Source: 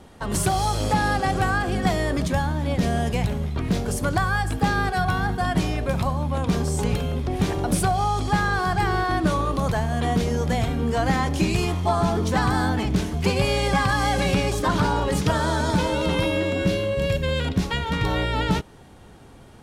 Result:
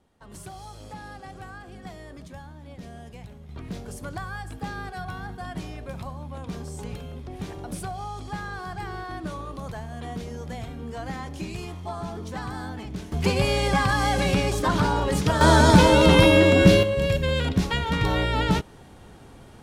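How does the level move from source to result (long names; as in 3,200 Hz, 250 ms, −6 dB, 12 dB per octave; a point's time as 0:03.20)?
−19 dB
from 0:03.49 −12 dB
from 0:13.12 −1 dB
from 0:15.41 +7.5 dB
from 0:16.83 0 dB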